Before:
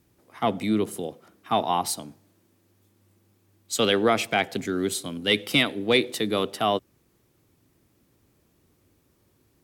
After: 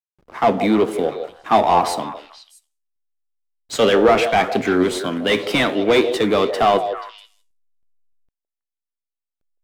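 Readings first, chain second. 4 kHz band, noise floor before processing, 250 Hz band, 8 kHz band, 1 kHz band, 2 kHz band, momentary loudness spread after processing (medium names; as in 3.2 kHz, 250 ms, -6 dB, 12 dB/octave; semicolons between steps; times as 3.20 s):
+1.5 dB, -66 dBFS, +7.0 dB, -1.0 dB, +9.5 dB, +5.0 dB, 12 LU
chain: overdrive pedal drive 20 dB, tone 1.1 kHz, clips at -8.5 dBFS; flange 0.65 Hz, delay 8.8 ms, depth 9 ms, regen +73%; hysteresis with a dead band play -47 dBFS; on a send: repeats whose band climbs or falls 161 ms, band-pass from 540 Hz, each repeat 1.4 oct, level -6.5 dB; on the sum: trim +9 dB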